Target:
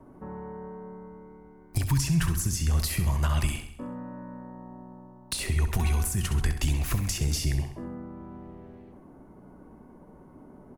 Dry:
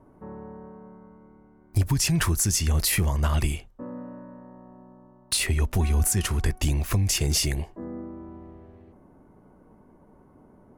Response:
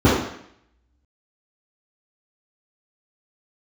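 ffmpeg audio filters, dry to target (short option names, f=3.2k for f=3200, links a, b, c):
-filter_complex "[0:a]acrossover=split=170|780[a][b][c];[a]acompressor=threshold=-24dB:ratio=4[d];[b]acompressor=threshold=-45dB:ratio=4[e];[c]acompressor=threshold=-35dB:ratio=4[f];[d][e][f]amix=inputs=3:normalize=0,aecho=1:1:66|132|198|264|330|396:0.335|0.167|0.0837|0.0419|0.0209|0.0105,asplit=2[g][h];[1:a]atrim=start_sample=2205[i];[h][i]afir=irnorm=-1:irlink=0,volume=-43.5dB[j];[g][j]amix=inputs=2:normalize=0,volume=2.5dB"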